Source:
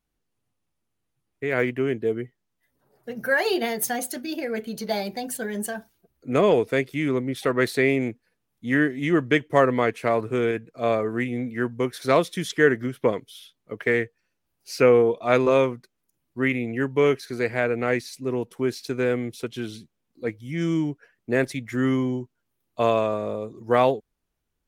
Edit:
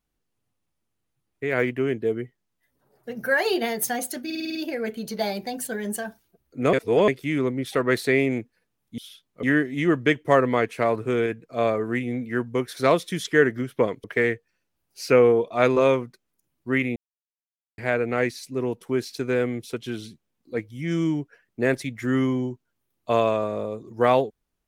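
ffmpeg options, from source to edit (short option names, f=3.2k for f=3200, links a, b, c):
-filter_complex "[0:a]asplit=14[a][b][c][d][e][f][g][h][i][j][k][l][m][n];[a]atrim=end=4.302[o];[b]atrim=start=4.248:end=4.302[p];[c]atrim=start=4.248:end=4.302[q];[d]atrim=start=4.248:end=4.302[r];[e]atrim=start=4.248:end=4.302[s];[f]atrim=start=4.248:end=4.302[t];[g]atrim=start=4.248:end=6.432[u];[h]atrim=start=6.428:end=6.782,asetpts=PTS-STARTPTS,areverse[v];[i]atrim=start=6.778:end=8.682[w];[j]atrim=start=13.288:end=13.742[x];[k]atrim=start=8.678:end=13.292[y];[l]atrim=start=13.738:end=16.66,asetpts=PTS-STARTPTS,afade=t=out:st=2.918:d=0.004:c=hsin[z];[m]atrim=start=16.66:end=17.48,asetpts=PTS-STARTPTS,volume=0[aa];[n]atrim=start=17.48,asetpts=PTS-STARTPTS,afade=t=in:d=0.004:c=hsin[ab];[o][p]acrossfade=d=0.004:c1=hsin:c2=hsin[ac];[ac][q]acrossfade=d=0.004:c1=hsin:c2=hsin[ad];[ad][r]acrossfade=d=0.004:c1=hsin:c2=hsin[ae];[ae][s]acrossfade=d=0.004:c1=hsin:c2=hsin[af];[af][t]acrossfade=d=0.004:c1=hsin:c2=hsin[ag];[ag][u]acrossfade=d=0.004:c1=hsin:c2=hsin[ah];[ah][v]acrossfade=d=0.004:c1=hsin:c2=hsin[ai];[ai][w]acrossfade=d=0.004:c1=hsin:c2=hsin[aj];[aj][x]acrossfade=d=0.004:c1=hsin:c2=hsin[ak];[ak][y]acrossfade=d=0.004:c1=hsin:c2=hsin[al];[z][aa][ab]concat=n=3:v=0:a=1[am];[al][am]acrossfade=d=0.004:c1=hsin:c2=hsin"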